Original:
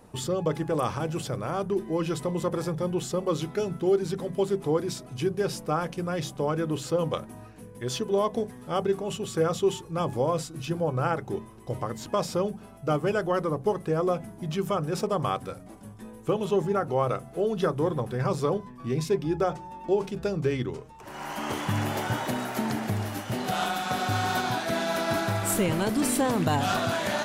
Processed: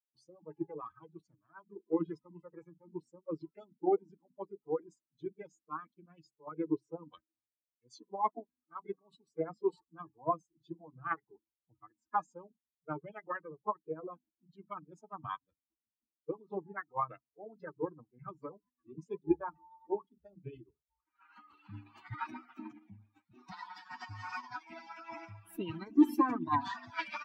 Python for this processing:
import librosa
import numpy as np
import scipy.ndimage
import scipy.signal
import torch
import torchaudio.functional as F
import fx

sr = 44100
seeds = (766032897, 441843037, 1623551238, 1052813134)

y = fx.bin_expand(x, sr, power=3.0)
y = fx.double_bandpass(y, sr, hz=540.0, octaves=1.6)
y = fx.formant_shift(y, sr, semitones=5)
y = fx.band_widen(y, sr, depth_pct=40)
y = y * 10.0 ** (8.5 / 20.0)